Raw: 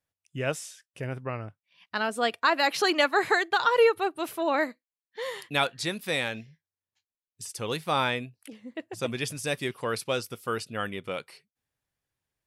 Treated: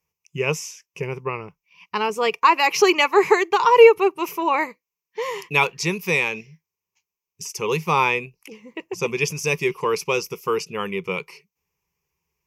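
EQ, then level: rippled EQ curve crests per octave 0.78, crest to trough 16 dB; +4.5 dB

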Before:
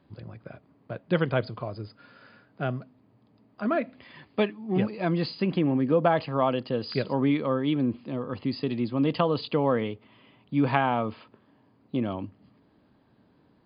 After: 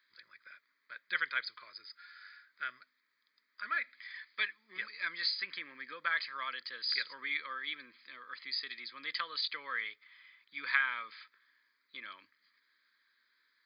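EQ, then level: resonant high-pass 2 kHz, resonance Q 2; treble shelf 3.7 kHz +6 dB; static phaser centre 2.8 kHz, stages 6; 0.0 dB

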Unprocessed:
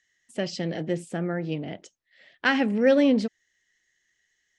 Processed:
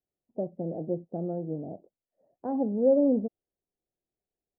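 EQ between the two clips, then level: steep low-pass 750 Hz 36 dB/octave; bass shelf 360 Hz -6 dB; 0.0 dB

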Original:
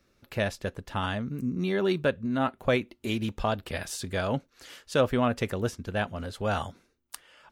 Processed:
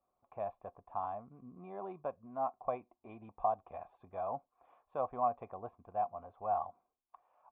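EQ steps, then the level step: cascade formant filter a; +4.0 dB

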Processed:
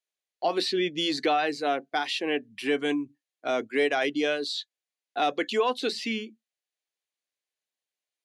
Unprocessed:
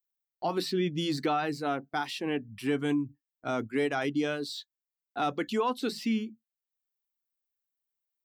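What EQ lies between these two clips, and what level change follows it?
cabinet simulation 460–9300 Hz, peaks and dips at 910 Hz -8 dB, 1.3 kHz -9 dB, 5.4 kHz -5 dB, 8.1 kHz -8 dB; +8.5 dB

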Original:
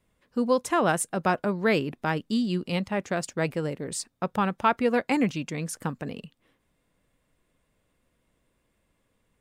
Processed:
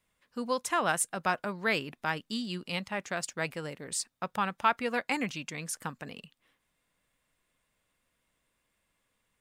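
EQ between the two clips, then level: peaking EQ 88 Hz -2.5 dB 2.5 oct; bass shelf 170 Hz -9.5 dB; peaking EQ 390 Hz -8.5 dB 2.1 oct; 0.0 dB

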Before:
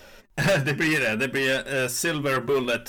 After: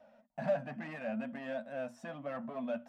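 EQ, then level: two resonant band-passes 390 Hz, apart 1.5 oct; peaking EQ 320 Hz -3 dB 0.37 oct; bass shelf 440 Hz -6 dB; +1.0 dB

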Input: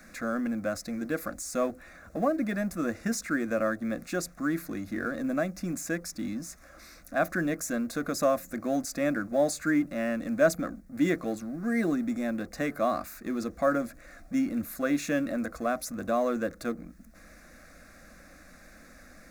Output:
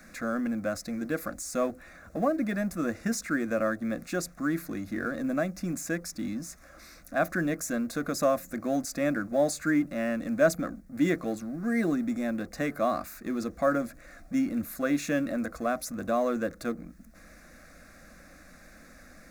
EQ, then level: peaking EQ 140 Hz +2 dB; 0.0 dB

